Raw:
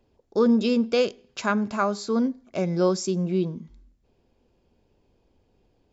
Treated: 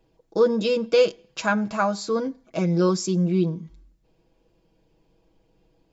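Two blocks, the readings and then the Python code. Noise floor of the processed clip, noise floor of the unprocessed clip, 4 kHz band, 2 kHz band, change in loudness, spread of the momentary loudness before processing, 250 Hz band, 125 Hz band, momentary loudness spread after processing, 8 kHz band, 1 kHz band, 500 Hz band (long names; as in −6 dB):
−67 dBFS, −68 dBFS, +2.0 dB, +3.5 dB, +1.5 dB, 9 LU, −1.0 dB, +4.5 dB, 7 LU, can't be measured, +1.5 dB, +3.0 dB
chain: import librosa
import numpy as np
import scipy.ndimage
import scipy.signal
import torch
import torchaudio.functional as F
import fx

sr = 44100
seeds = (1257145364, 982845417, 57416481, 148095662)

y = x + 0.8 * np.pad(x, (int(6.2 * sr / 1000.0), 0))[:len(x)]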